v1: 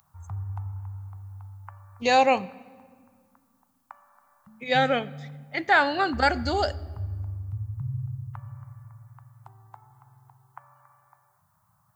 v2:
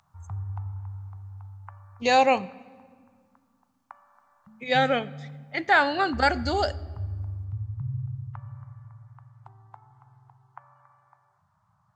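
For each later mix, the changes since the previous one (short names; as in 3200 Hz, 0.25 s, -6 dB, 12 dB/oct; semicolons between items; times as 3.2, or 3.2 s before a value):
background: add air absorption 110 m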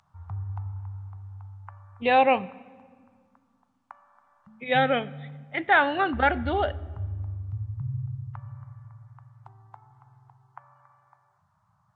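speech: add steep low-pass 3700 Hz 96 dB/oct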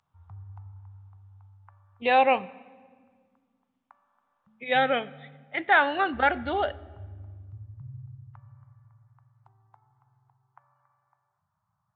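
speech: add low shelf 180 Hz -12 dB; background -10.5 dB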